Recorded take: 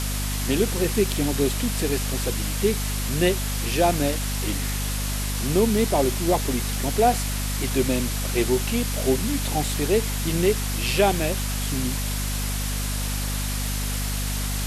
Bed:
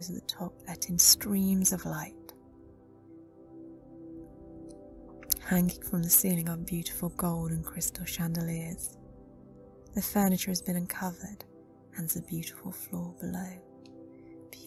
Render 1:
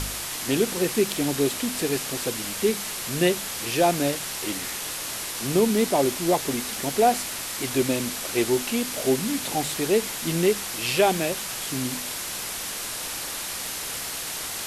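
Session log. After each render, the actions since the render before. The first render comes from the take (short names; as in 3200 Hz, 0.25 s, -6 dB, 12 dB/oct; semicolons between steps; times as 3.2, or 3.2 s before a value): de-hum 50 Hz, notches 5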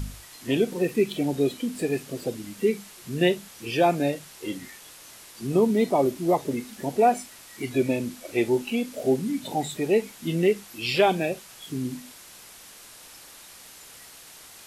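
noise print and reduce 15 dB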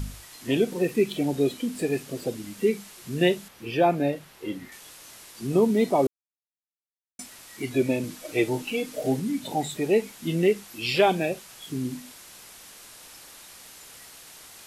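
3.48–4.72 bell 7800 Hz -10.5 dB 1.9 oct; 6.07–7.19 mute; 8.03–9.2 comb 6.5 ms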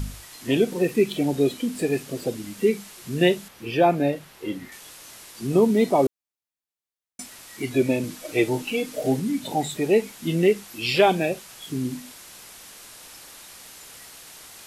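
gain +2.5 dB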